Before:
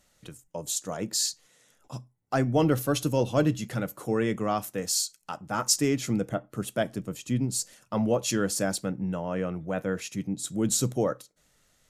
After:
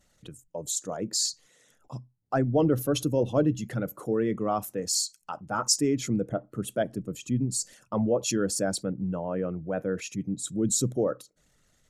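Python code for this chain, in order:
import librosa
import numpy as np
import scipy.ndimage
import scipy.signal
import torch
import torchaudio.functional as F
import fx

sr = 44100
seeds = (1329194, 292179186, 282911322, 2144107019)

y = fx.envelope_sharpen(x, sr, power=1.5)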